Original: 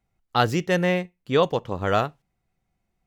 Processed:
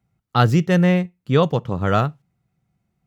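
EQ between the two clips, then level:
high-pass filter 52 Hz
parametric band 140 Hz +12 dB 1.5 octaves
parametric band 1,300 Hz +4.5 dB 0.29 octaves
0.0 dB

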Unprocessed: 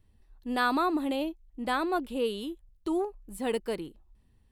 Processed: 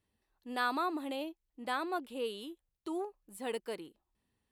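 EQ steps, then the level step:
high-pass filter 390 Hz 6 dB per octave
−5.0 dB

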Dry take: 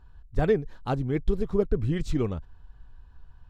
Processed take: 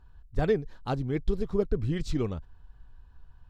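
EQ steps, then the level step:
dynamic equaliser 4,700 Hz, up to +6 dB, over −58 dBFS, Q 1.6
−2.5 dB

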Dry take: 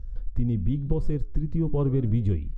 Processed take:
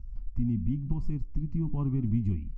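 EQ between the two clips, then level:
parametric band 230 Hz +7.5 dB 0.77 octaves
phaser with its sweep stopped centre 2,400 Hz, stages 8
−5.0 dB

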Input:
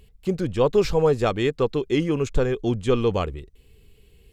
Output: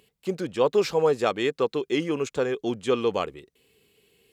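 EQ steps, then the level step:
high-pass filter 180 Hz 12 dB per octave
low-shelf EQ 280 Hz −7 dB
0.0 dB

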